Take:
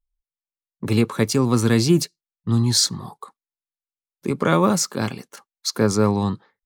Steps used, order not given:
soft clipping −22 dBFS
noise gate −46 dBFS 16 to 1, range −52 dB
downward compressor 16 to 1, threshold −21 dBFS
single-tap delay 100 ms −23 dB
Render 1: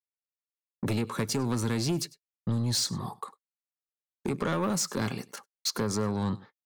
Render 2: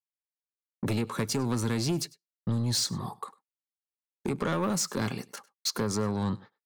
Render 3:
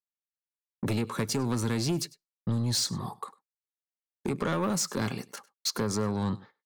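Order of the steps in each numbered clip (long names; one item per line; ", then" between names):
downward compressor, then single-tap delay, then noise gate, then soft clipping
downward compressor, then soft clipping, then noise gate, then single-tap delay
noise gate, then downward compressor, then single-tap delay, then soft clipping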